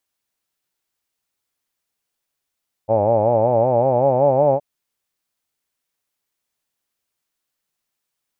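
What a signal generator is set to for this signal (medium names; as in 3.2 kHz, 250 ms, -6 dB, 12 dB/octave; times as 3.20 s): formant-synthesis vowel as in hawed, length 1.72 s, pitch 105 Hz, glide +5.5 st, vibrato depth 1.2 st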